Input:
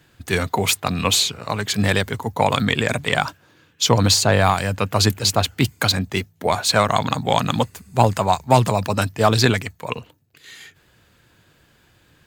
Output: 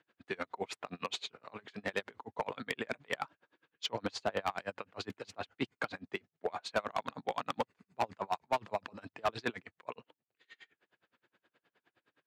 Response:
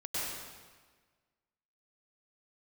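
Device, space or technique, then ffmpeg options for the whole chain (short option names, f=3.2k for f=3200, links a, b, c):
helicopter radio: -af "highpass=310,lowpass=2.8k,aeval=exprs='val(0)*pow(10,-33*(0.5-0.5*cos(2*PI*9.6*n/s))/20)':c=same,asoftclip=type=hard:threshold=-16dB,volume=-8dB"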